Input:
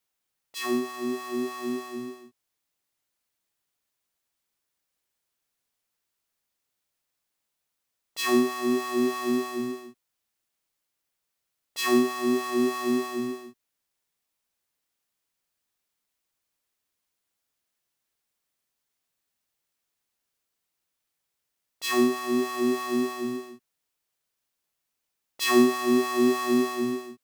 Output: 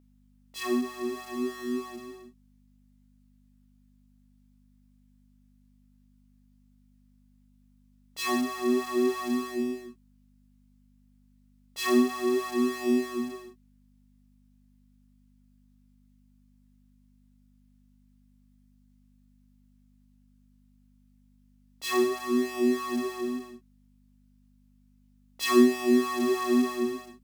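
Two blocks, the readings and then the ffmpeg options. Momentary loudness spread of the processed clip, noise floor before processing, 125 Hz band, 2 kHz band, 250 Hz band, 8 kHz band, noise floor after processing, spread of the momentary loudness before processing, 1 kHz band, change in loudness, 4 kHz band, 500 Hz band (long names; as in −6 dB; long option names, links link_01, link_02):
13 LU, −82 dBFS, can't be measured, −3.0 dB, −1.0 dB, −3.0 dB, −62 dBFS, 12 LU, −3.0 dB, −1.5 dB, −3.0 dB, −1.5 dB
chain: -af "flanger=delay=16.5:depth=7.2:speed=0.31,aeval=exprs='val(0)+0.002*(sin(2*PI*50*n/s)+sin(2*PI*2*50*n/s)/2+sin(2*PI*3*50*n/s)/3+sin(2*PI*4*50*n/s)/4+sin(2*PI*5*50*n/s)/5)':channel_layout=same,lowshelf=frequency=180:width_type=q:width=1.5:gain=-7.5"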